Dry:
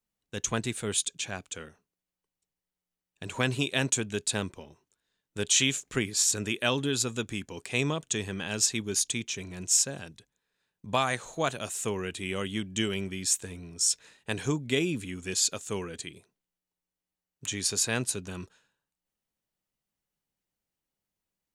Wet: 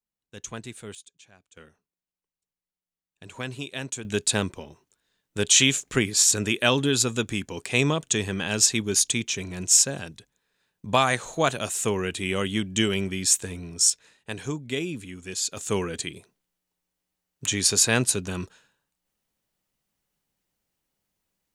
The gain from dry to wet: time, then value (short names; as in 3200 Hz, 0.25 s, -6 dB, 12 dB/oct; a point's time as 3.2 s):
-7 dB
from 0.95 s -19 dB
from 1.57 s -6 dB
from 4.05 s +6 dB
from 13.9 s -2 dB
from 15.57 s +7.5 dB